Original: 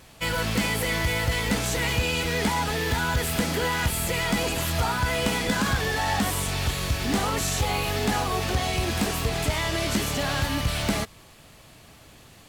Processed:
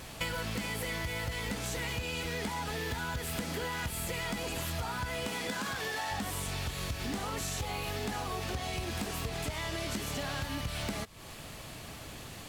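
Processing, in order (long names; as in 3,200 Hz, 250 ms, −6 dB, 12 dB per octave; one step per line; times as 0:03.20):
0:05.25–0:06.10: high-pass filter 170 Hz → 490 Hz 6 dB per octave
downward compressor 10 to 1, threshold −38 dBFS, peak gain reduction 18.5 dB
level +5 dB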